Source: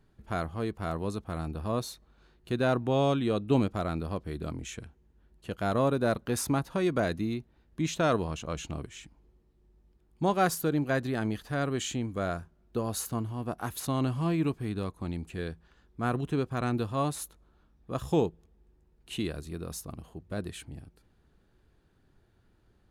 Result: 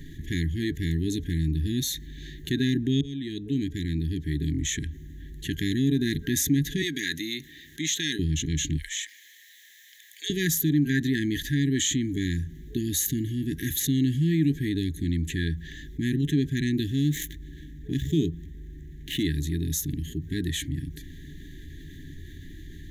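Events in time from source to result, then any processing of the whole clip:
3.01–4.77 fade in
6.82–8.19 HPF 1500 Hz 6 dB/oct
8.77–10.3 HPF 1200 Hz 24 dB/oct
16.88–19.23 median filter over 9 samples
whole clip: FFT band-reject 430–1600 Hz; ripple EQ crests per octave 1.1, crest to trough 12 dB; fast leveller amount 50%

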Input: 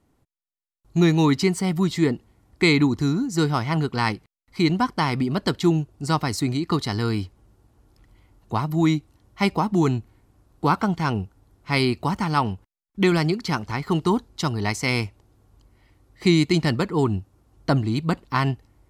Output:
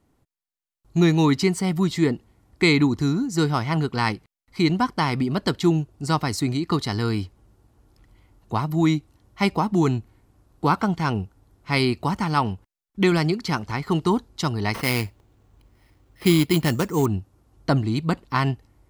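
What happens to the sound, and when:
14.74–17.06 sample-rate reducer 7200 Hz

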